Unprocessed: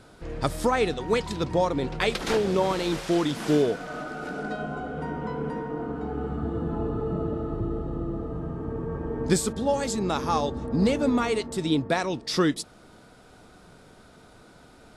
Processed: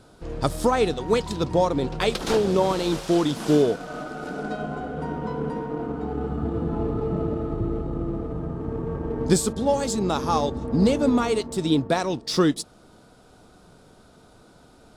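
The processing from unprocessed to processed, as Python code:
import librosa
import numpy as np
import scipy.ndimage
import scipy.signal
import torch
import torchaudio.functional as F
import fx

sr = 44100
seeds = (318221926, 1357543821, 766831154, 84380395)

p1 = fx.peak_eq(x, sr, hz=2000.0, db=-6.5, octaves=0.9)
p2 = np.sign(p1) * np.maximum(np.abs(p1) - 10.0 ** (-39.0 / 20.0), 0.0)
y = p1 + F.gain(torch.from_numpy(p2), -6.0).numpy()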